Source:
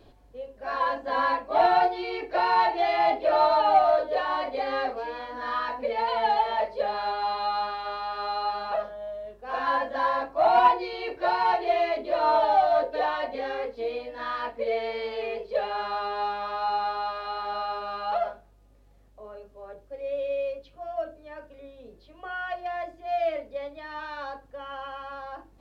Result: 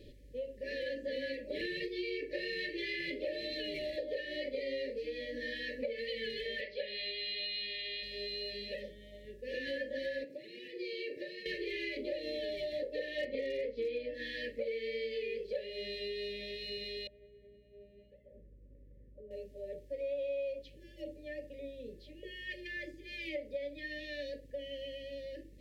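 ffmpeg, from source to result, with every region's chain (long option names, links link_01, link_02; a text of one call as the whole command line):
ffmpeg -i in.wav -filter_complex "[0:a]asettb=1/sr,asplit=3[link_01][link_02][link_03];[link_01]atrim=end=6.614[link_04];[link_02]atrim=start=6.61:end=8.03,asetpts=PTS-STARTPTS,afade=type=in:duration=0.004:curve=qsin,afade=type=out:start_time=1.416:duration=0.004:curve=qsin,lowpass=frequency=3800:width=0.5412,lowpass=frequency=3800:width=1.3066,tiltshelf=frequency=1200:gain=-9[link_05];[link_03]atrim=start=8.026[link_06];[link_04][link_05]acrossfade=duration=0.004:curve1=hsin:curve2=qsin[link_07];[link_07][link_06]acrossfade=duration=0.004:curve1=qsin:curve2=hsin,asettb=1/sr,asplit=3[link_08][link_09][link_10];[link_08]atrim=end=10.244[link_11];[link_09]atrim=start=10.24:end=11.46,asetpts=PTS-STARTPTS,afade=type=in:duration=0.004:curve=qsin,afade=type=out:start_time=1.216:duration=0.004:curve=qsin,highpass=frequency=130:width=0.5412,highpass=frequency=130:width=1.3066,acompressor=threshold=-39dB:ratio=2.5:attack=3.2:release=140:knee=1:detection=peak[link_12];[link_10]atrim=start=11.456[link_13];[link_11][link_12]acrossfade=duration=0.004:curve1=hsin:curve2=qsin[link_14];[link_14][link_13]acrossfade=duration=0.004:curve1=qsin:curve2=hsin,asettb=1/sr,asplit=3[link_15][link_16][link_17];[link_15]atrim=end=13.184[link_18];[link_16]atrim=start=13.18:end=14.14,asetpts=PTS-STARTPTS,afade=type=in:duration=0.004:curve=qsin,afade=type=out:start_time=0.956:duration=0.004:curve=qsin,lowpass=4100,acontrast=34,volume=19dB,asoftclip=hard,volume=-19dB[link_19];[link_17]atrim=start=14.136[link_20];[link_18][link_19]acrossfade=duration=0.004:curve1=hsin:curve2=qsin[link_21];[link_21][link_20]acrossfade=duration=0.004:curve1=qsin:curve2=hsin,asettb=1/sr,asplit=3[link_22][link_23][link_24];[link_22]atrim=end=17.074[link_25];[link_23]atrim=start=17.07:end=19.31,asetpts=PTS-STARTPTS,afade=type=in:duration=0.004:curve=qsin,afade=type=out:start_time=2.236:duration=0.004:curve=qsin,acompressor=threshold=-45dB:ratio=5:attack=3.2:release=140:knee=1:detection=peak,lowpass=1000,aeval=exprs='val(0)+0.000398*(sin(2*PI*60*n/s)+sin(2*PI*2*60*n/s)/2+sin(2*PI*3*60*n/s)/3+sin(2*PI*4*60*n/s)/4+sin(2*PI*5*60*n/s)/5)':channel_layout=same[link_26];[link_24]atrim=start=19.306[link_27];[link_25][link_26]acrossfade=duration=0.004:curve1=hsin:curve2=qsin[link_28];[link_28][link_27]acrossfade=duration=0.004:curve1=qsin:curve2=hsin,afftfilt=real='re*(1-between(b*sr/4096,610,1700))':imag='im*(1-between(b*sr/4096,610,1700))':win_size=4096:overlap=0.75,acompressor=threshold=-37dB:ratio=4,volume=1dB" out.wav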